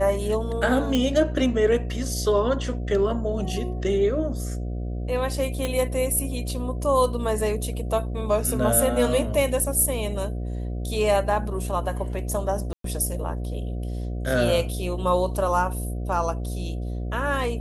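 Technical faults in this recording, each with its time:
buzz 60 Hz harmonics 12 -29 dBFS
0.95 s: pop -10 dBFS
5.65 s: pop -12 dBFS
12.73–12.84 s: dropout 113 ms

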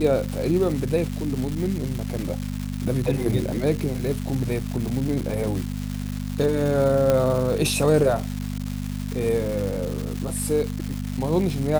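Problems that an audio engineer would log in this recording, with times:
crackle 520 per s -28 dBFS
hum 50 Hz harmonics 5 -29 dBFS
7.10 s: pop -8 dBFS

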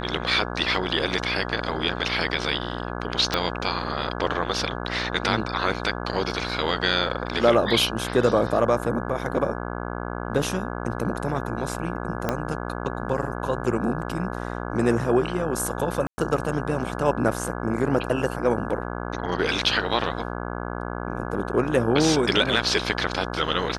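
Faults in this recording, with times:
buzz 60 Hz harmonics 28 -31 dBFS
3.34 s: pop -8 dBFS
12.29 s: pop -9 dBFS
16.07–16.18 s: dropout 110 ms

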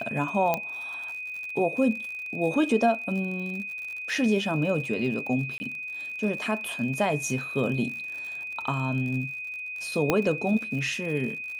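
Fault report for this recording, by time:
crackle 63 per s -35 dBFS
whine 2.5 kHz -33 dBFS
0.54 s: pop -11 dBFS
5.58–5.60 s: dropout 20 ms
10.10 s: pop -8 dBFS

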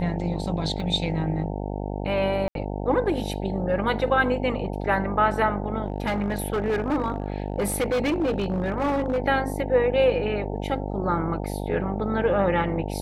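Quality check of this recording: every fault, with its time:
buzz 50 Hz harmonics 18 -30 dBFS
0.80 s: dropout 2 ms
2.48–2.55 s: dropout 72 ms
5.86–9.19 s: clipped -20 dBFS

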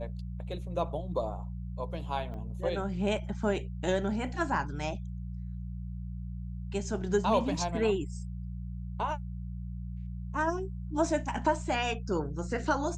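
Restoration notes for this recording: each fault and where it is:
hum 60 Hz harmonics 3 -38 dBFS
2.34 s: dropout 2.6 ms

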